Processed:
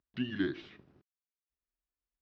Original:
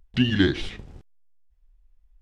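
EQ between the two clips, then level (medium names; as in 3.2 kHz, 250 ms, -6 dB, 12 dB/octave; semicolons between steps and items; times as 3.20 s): distance through air 72 m; cabinet simulation 210–5900 Hz, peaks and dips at 220 Hz -4 dB, 490 Hz -9 dB, 810 Hz -9 dB, 2.1 kHz -3 dB, 3.2 kHz -3 dB; treble shelf 2.9 kHz -9.5 dB; -8.5 dB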